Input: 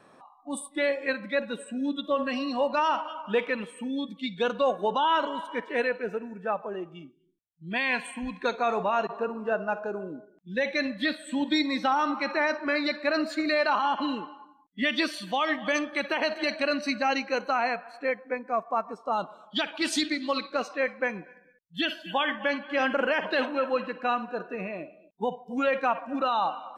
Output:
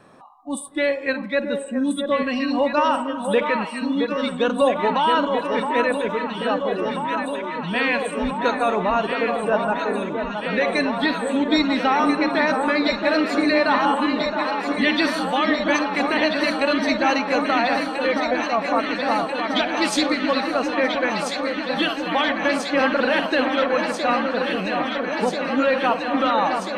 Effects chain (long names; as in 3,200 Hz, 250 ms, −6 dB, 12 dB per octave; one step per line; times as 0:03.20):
low-shelf EQ 160 Hz +8.5 dB
on a send: delay that swaps between a low-pass and a high-pass 669 ms, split 1,400 Hz, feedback 90%, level −5.5 dB
on the sum: level +4.5 dB